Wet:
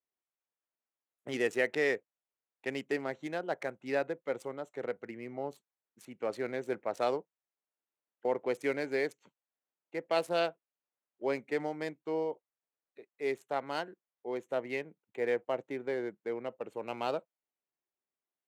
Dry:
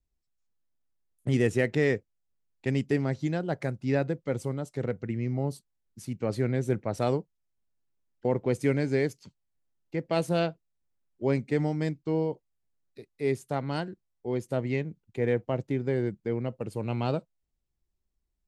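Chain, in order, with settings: Wiener smoothing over 9 samples; HPF 500 Hz 12 dB/oct

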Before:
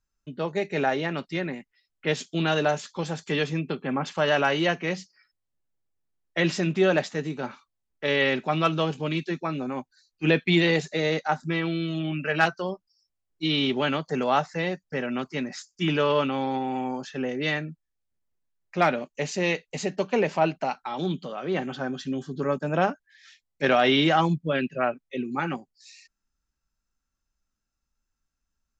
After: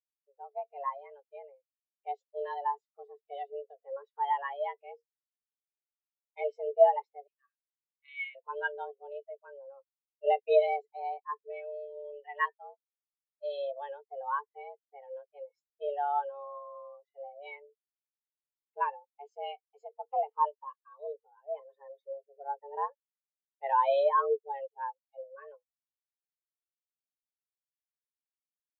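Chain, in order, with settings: 7.27–8.35 elliptic high-pass 890 Hz; frequency shift +280 Hz; spectral expander 2.5:1; gain -3 dB

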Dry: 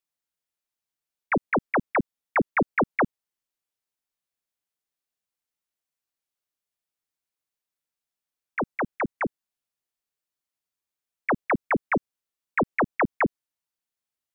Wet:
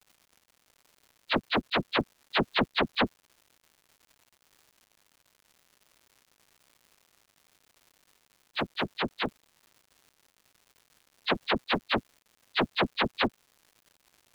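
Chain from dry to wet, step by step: inharmonic rescaling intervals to 127%; crackle 250/s -50 dBFS; gain +3 dB

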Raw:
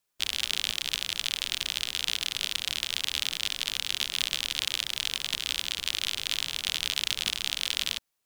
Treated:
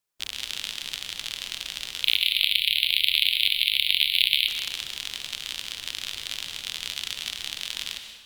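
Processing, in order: 2.04–4.48 EQ curve 130 Hz 0 dB, 220 Hz -23 dB, 410 Hz -5 dB, 780 Hz -28 dB, 1400 Hz -29 dB, 2200 Hz +14 dB, 4200 Hz +11 dB, 6100 Hz -26 dB, 11000 Hz +11 dB; plate-style reverb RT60 1.3 s, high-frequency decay 0.75×, pre-delay 0.105 s, DRR 6 dB; gain -3.5 dB

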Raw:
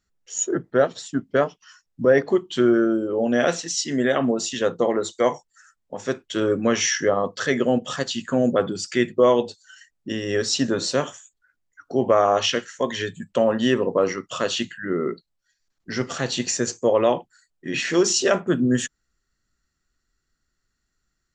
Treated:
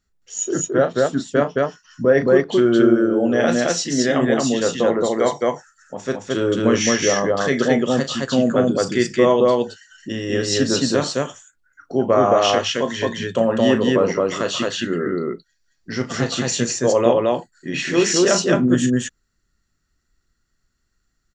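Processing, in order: low shelf 260 Hz +4 dB; on a send: loudspeakers at several distances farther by 12 m -9 dB, 75 m -1 dB

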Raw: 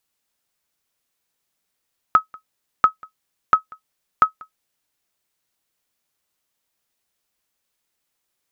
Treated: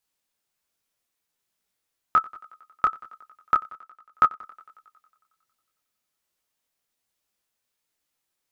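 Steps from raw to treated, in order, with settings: 3.65–4.4 transient shaper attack +2 dB, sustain -7 dB; thinning echo 91 ms, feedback 71%, high-pass 170 Hz, level -21.5 dB; detuned doubles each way 43 cents

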